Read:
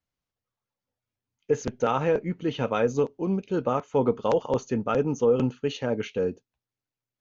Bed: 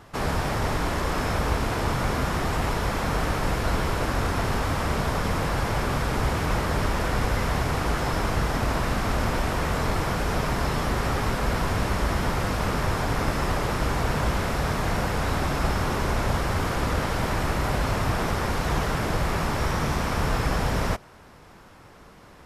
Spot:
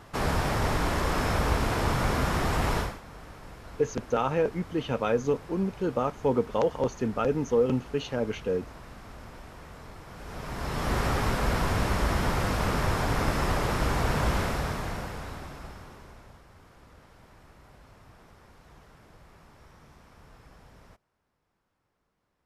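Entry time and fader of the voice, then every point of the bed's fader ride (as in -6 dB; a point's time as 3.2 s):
2.30 s, -2.0 dB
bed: 2.8 s -1 dB
3.01 s -20.5 dB
10.05 s -20.5 dB
10.94 s -1.5 dB
14.4 s -1.5 dB
16.45 s -29 dB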